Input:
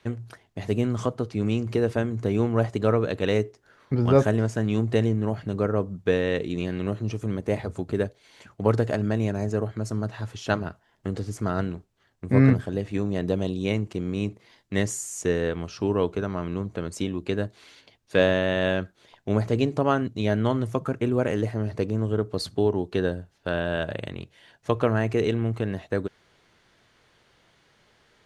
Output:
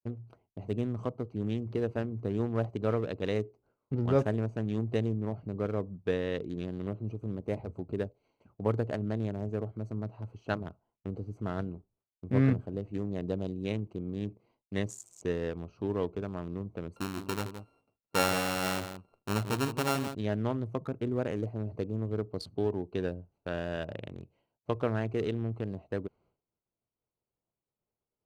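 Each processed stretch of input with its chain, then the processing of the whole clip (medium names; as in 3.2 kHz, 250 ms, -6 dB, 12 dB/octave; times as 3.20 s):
16.96–20.15 s: sorted samples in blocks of 32 samples + delay 168 ms -8.5 dB
whole clip: local Wiener filter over 25 samples; expander -53 dBFS; trim -7.5 dB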